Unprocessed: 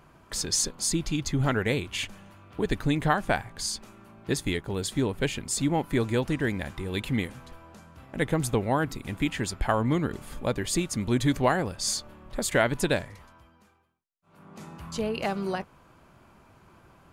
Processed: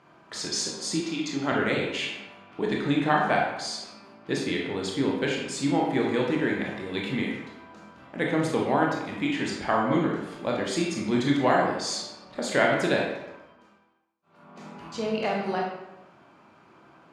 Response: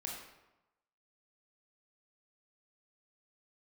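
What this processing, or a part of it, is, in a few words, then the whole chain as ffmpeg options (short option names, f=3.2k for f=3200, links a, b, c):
supermarket ceiling speaker: -filter_complex "[0:a]highpass=200,lowpass=5.3k[a];[1:a]atrim=start_sample=2205[b];[a][b]afir=irnorm=-1:irlink=0,asettb=1/sr,asplit=3[c][d][e];[c]atrim=end=1.004[f];[d]atrim=start=1:end=1.52,asetpts=PTS-STARTPTS,afade=t=in:d=0.004:c=qsin,afade=t=out:st=0.516:d=0.004:c=qsin,highpass=230[g];[e]atrim=start=1.516[h];[f][g]acrossfade=d=0.004:c1=hsin:c2=qsin[i];[i][h]acrossfade=d=0.004:c1=qsin:c2=hsin,volume=3.5dB"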